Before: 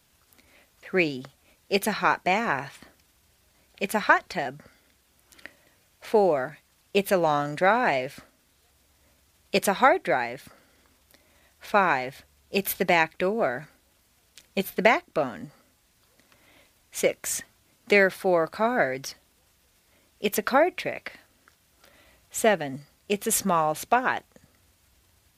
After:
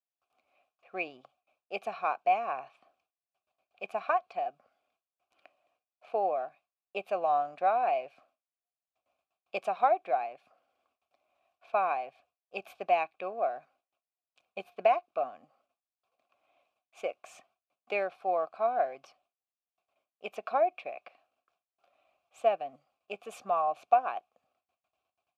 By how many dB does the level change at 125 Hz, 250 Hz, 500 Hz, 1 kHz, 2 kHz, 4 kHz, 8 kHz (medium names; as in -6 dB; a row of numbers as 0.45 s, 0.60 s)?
under -25 dB, -20.5 dB, -7.0 dB, -3.5 dB, -15.5 dB, -16.5 dB, under -25 dB